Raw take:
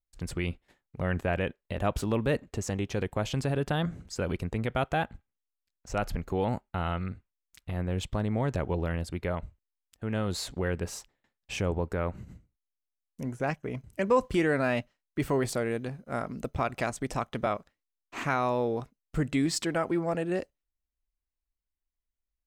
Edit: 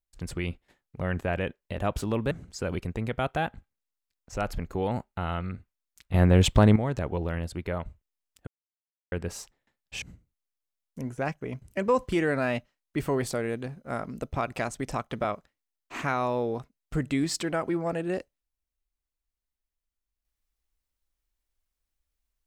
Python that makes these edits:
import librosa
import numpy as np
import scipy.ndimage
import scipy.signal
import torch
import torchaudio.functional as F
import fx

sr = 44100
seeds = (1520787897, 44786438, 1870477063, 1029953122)

y = fx.edit(x, sr, fx.cut(start_s=2.31, length_s=1.57),
    fx.clip_gain(start_s=7.71, length_s=0.62, db=12.0),
    fx.silence(start_s=10.04, length_s=0.65),
    fx.cut(start_s=11.59, length_s=0.65), tone=tone)